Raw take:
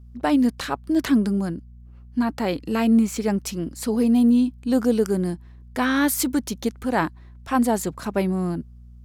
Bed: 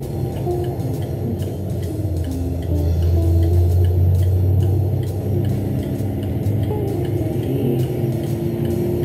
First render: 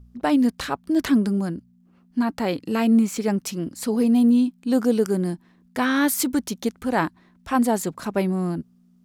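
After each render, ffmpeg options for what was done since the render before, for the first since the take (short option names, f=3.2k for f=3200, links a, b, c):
-af "bandreject=f=60:t=h:w=4,bandreject=f=120:t=h:w=4"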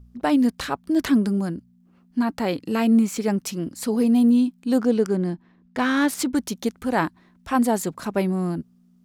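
-filter_complex "[0:a]asettb=1/sr,asplit=3[a][b][c];[a]atrim=end=4.784[d];[b]atrim=start=4.78:end=6.35,asetpts=PTS-STARTPTS,afade=t=in:d=0.004:c=qsin,afade=t=out:st=1.566:d=0.004:c=qsin,adynamicsmooth=sensitivity=4:basefreq=4.2k[e];[c]atrim=start=6.346[f];[d][e]acrossfade=d=0.004:c1=hsin:c2=qsin[g];[g][f]acrossfade=d=0.004:c1=qsin:c2=hsin"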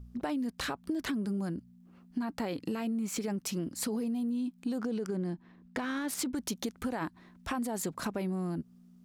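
-af "alimiter=limit=-19dB:level=0:latency=1:release=41,acompressor=threshold=-31dB:ratio=6"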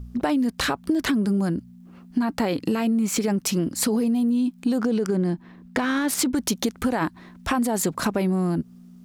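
-af "volume=11dB"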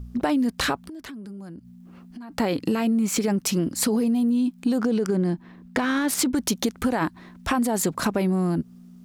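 -filter_complex "[0:a]asplit=3[a][b][c];[a]afade=t=out:st=0.84:d=0.02[d];[b]acompressor=threshold=-38dB:ratio=5:attack=3.2:release=140:knee=1:detection=peak,afade=t=in:st=0.84:d=0.02,afade=t=out:st=2.3:d=0.02[e];[c]afade=t=in:st=2.3:d=0.02[f];[d][e][f]amix=inputs=3:normalize=0"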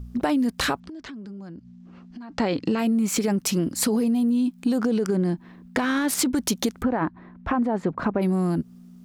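-filter_complex "[0:a]asettb=1/sr,asplit=3[a][b][c];[a]atrim=end=0.804[d];[b]atrim=start=0.8:end=2.79,asetpts=PTS-STARTPTS,afade=t=in:d=0.004:c=qsin,afade=t=out:st=1.986:d=0.004:c=qsin,lowpass=f=6.5k:w=0.5412,lowpass=f=6.5k:w=1.3066[e];[c]atrim=start=2.786[f];[d][e]acrossfade=d=0.004:c1=hsin:c2=qsin[g];[g][f]acrossfade=d=0.004:c1=qsin:c2=hsin,asplit=3[h][i][j];[h]afade=t=out:st=6.81:d=0.02[k];[i]lowpass=1.6k,afade=t=in:st=6.81:d=0.02,afade=t=out:st=8.21:d=0.02[l];[j]afade=t=in:st=8.21:d=0.02[m];[k][l][m]amix=inputs=3:normalize=0"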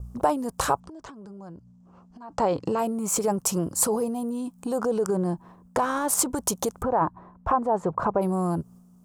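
-af "agate=range=-33dB:threshold=-42dB:ratio=3:detection=peak,equalizer=f=125:t=o:w=1:g=4,equalizer=f=250:t=o:w=1:g=-11,equalizer=f=500:t=o:w=1:g=4,equalizer=f=1k:t=o:w=1:g=9,equalizer=f=2k:t=o:w=1:g=-12,equalizer=f=4k:t=o:w=1:g=-9,equalizer=f=8k:t=o:w=1:g=6"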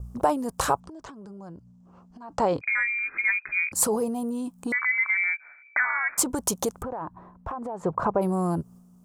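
-filter_complex "[0:a]asettb=1/sr,asplit=3[a][b][c];[a]atrim=end=2.614[d];[b]atrim=start=2.61:end=3.72,asetpts=PTS-STARTPTS,afade=t=in:d=0.004:c=qsin,afade=t=out:st=1.106:d=0.004:c=qsin,lowpass=f=2.2k:t=q:w=0.5098,lowpass=f=2.2k:t=q:w=0.6013,lowpass=f=2.2k:t=q:w=0.9,lowpass=f=2.2k:t=q:w=2.563,afreqshift=-2600[e];[c]atrim=start=3.716[f];[d][e]acrossfade=d=0.004:c1=hsin:c2=qsin[g];[g][f]acrossfade=d=0.004:c1=qsin:c2=hsin,asettb=1/sr,asplit=3[h][i][j];[h]atrim=end=4.724[k];[i]atrim=start=4.72:end=6.18,asetpts=PTS-STARTPTS,afade=t=in:d=0.004:c=qsin,afade=t=out:st=1.456:d=0.004:c=qsin,lowpass=f=2.1k:t=q:w=0.5098,lowpass=f=2.1k:t=q:w=0.6013,lowpass=f=2.1k:t=q:w=0.9,lowpass=f=2.1k:t=q:w=2.563,afreqshift=-2500[l];[j]atrim=start=6.176[m];[k][l]acrossfade=d=0.004:c1=hsin:c2=qsin[n];[n][m]acrossfade=d=0.004:c1=qsin:c2=hsin,asettb=1/sr,asplit=3[o][p][q];[o]atrim=end=6.804[r];[p]atrim=start=6.8:end=7.83,asetpts=PTS-STARTPTS,afade=t=in:d=0.004:c=qsin,afade=t=out:st=1.026:d=0.004:c=qsin,acompressor=threshold=-29dB:ratio=10:attack=3.2:release=140:knee=1:detection=peak[s];[q]atrim=start=7.826[t];[r][s]acrossfade=d=0.004:c1=hsin:c2=qsin[u];[u][t]acrossfade=d=0.004:c1=qsin:c2=hsin"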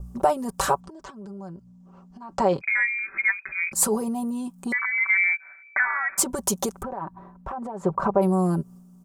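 -af "aecho=1:1:5.2:0.67"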